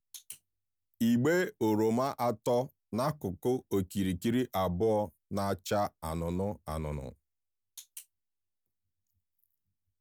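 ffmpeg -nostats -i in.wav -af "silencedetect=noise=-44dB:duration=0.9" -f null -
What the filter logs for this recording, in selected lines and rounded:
silence_start: 8.02
silence_end: 10.00 | silence_duration: 1.99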